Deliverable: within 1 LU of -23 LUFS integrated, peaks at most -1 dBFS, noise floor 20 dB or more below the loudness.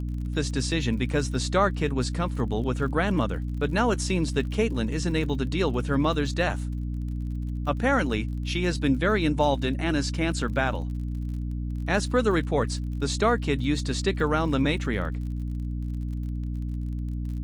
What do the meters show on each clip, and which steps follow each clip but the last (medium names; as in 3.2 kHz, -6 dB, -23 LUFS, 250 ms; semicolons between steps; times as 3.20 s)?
tick rate 44 per s; hum 60 Hz; highest harmonic 300 Hz; hum level -27 dBFS; loudness -26.5 LUFS; peak level -8.5 dBFS; loudness target -23.0 LUFS
-> de-click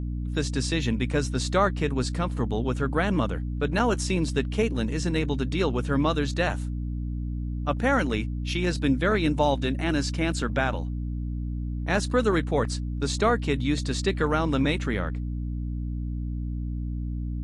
tick rate 0 per s; hum 60 Hz; highest harmonic 300 Hz; hum level -27 dBFS
-> hum notches 60/120/180/240/300 Hz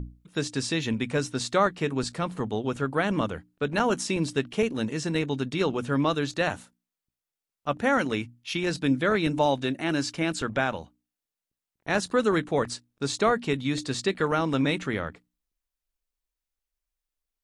hum not found; loudness -27.0 LUFS; peak level -9.5 dBFS; loudness target -23.0 LUFS
-> trim +4 dB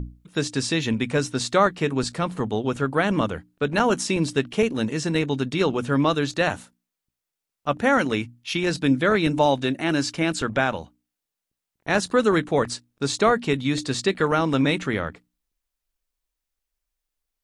loudness -23.0 LUFS; peak level -5.5 dBFS; noise floor -85 dBFS